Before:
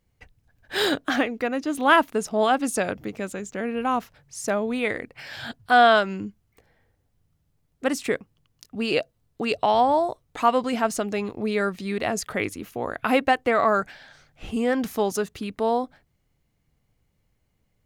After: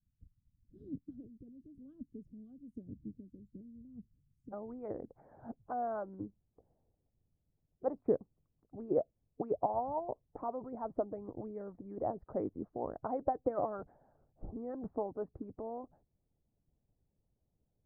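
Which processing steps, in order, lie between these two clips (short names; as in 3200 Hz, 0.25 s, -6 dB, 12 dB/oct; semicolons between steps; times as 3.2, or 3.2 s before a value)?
inverse Chebyshev low-pass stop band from 790 Hz, stop band 60 dB, from 4.52 s stop band from 2700 Hz; harmonic-percussive split harmonic -15 dB; gain -4 dB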